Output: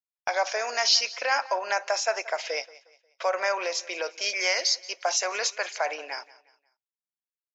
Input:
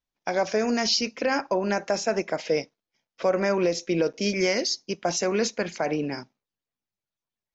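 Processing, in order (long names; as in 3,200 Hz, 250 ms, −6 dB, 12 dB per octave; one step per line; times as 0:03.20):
high-pass filter 670 Hz 24 dB per octave
noise gate −48 dBFS, range −26 dB
repeating echo 179 ms, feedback 37%, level −20 dB
level +3 dB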